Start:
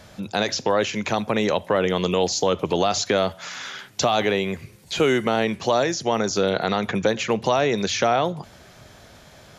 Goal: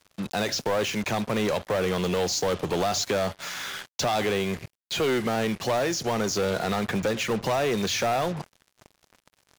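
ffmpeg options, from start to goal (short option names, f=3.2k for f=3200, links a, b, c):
-af "asoftclip=type=tanh:threshold=-20.5dB,acrusher=bits=5:mix=0:aa=0.5"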